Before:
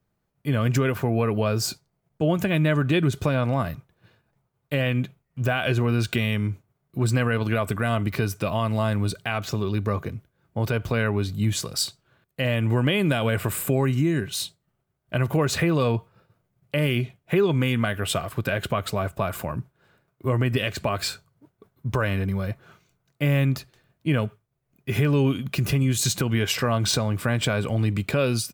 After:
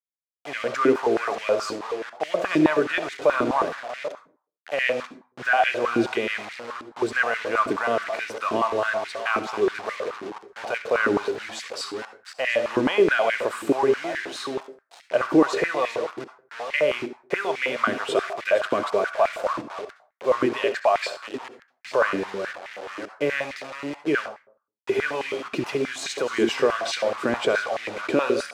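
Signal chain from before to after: reverse delay 0.524 s, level -12 dB; bell 4500 Hz -3.5 dB 1.7 oct; requantised 6-bit, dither none; air absorption 91 m; reverb RT60 0.45 s, pre-delay 57 ms, DRR 10.5 dB; stepped high-pass 9.4 Hz 320–2000 Hz

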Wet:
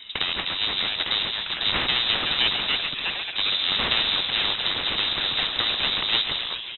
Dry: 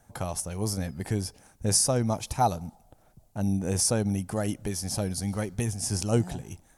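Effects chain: minimum comb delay 1.1 ms; echoes that change speed 0.676 s, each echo +3 st, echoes 3, each echo -6 dB; frequency-shifting echo 0.136 s, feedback 57%, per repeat +120 Hz, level -16 dB; inverted band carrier 3800 Hz; spectral compressor 2:1; gain +3.5 dB

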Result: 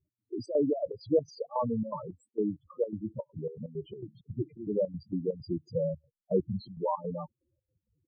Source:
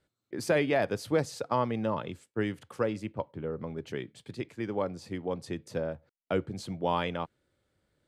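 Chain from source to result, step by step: 3.98–6.57 low shelf 340 Hz +5.5 dB; loudest bins only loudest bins 4; step gate "x.xxx.xx.x.xx.x" 164 bpm -12 dB; gain +3.5 dB

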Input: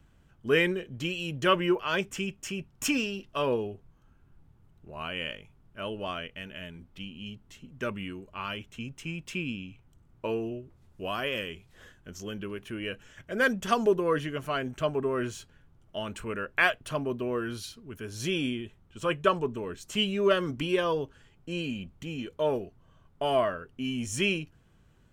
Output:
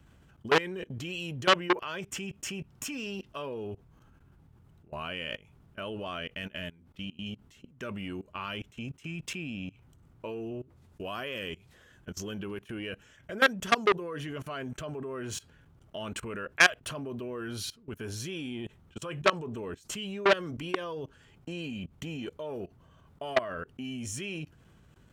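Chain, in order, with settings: HPF 44 Hz 12 dB/oct; level quantiser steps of 22 dB; core saturation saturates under 3100 Hz; gain +7.5 dB

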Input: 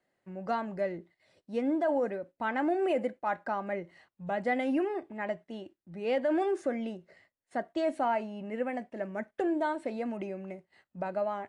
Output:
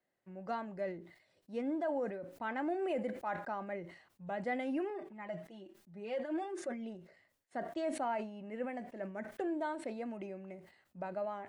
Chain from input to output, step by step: 4.9–6.95 flange 1 Hz, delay 4.6 ms, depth 1.8 ms, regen +4%; sustainer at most 93 dB/s; gain -7 dB

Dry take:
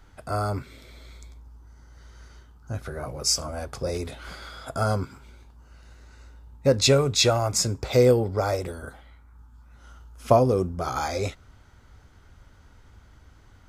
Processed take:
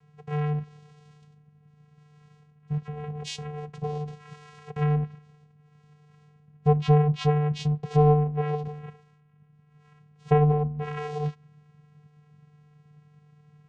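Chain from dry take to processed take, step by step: vocoder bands 4, square 149 Hz; treble ducked by the level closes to 2700 Hz, closed at -20.5 dBFS

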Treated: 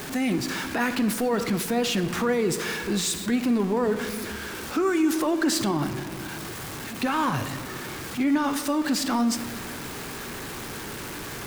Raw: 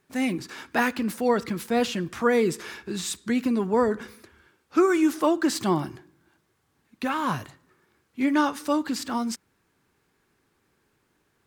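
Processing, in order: zero-crossing step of -32.5 dBFS; limiter -19.5 dBFS, peak gain reduction 11 dB; on a send: reverb RT60 1.9 s, pre-delay 3 ms, DRR 10.5 dB; on the sum: gain +2.5 dB

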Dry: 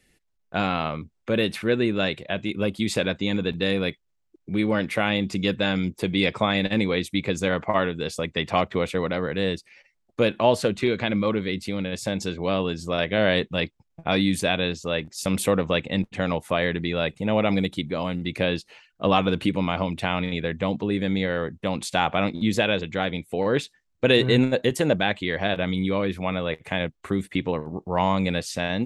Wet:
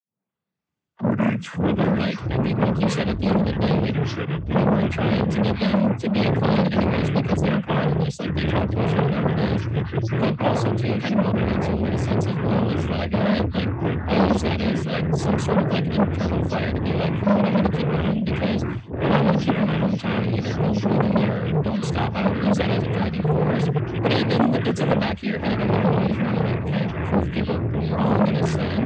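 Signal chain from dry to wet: tape start at the beginning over 2.09 s; noise vocoder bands 16; bell 200 Hz +12.5 dB 0.73 oct; echoes that change speed 0.198 s, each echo -5 st, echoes 3; core saturation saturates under 950 Hz; gain -1.5 dB

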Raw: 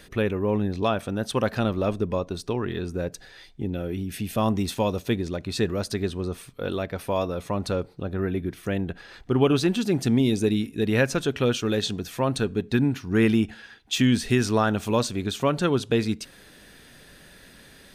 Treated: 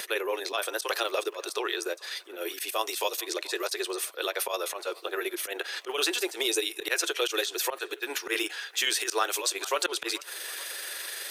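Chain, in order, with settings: Chebyshev high-pass 340 Hz, order 6; tilt +4 dB/oct; auto swell 0.15 s; in parallel at -2 dB: compressor, threshold -35 dBFS, peak gain reduction 15.5 dB; on the sum: vibrato 1.6 Hz 5.9 cents; granular stretch 0.63×, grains 85 ms; on a send: band-limited delay 0.433 s, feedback 50%, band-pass 1400 Hz, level -21.5 dB; on the sum: three-band squash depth 40%

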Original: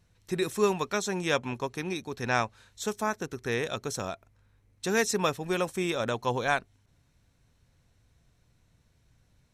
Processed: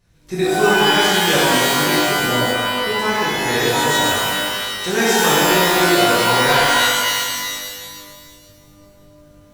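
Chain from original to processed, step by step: spectral delete 2.02–2.92, 720–8700 Hz; shimmer reverb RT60 1.9 s, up +12 st, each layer -2 dB, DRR -8.5 dB; gain +1.5 dB

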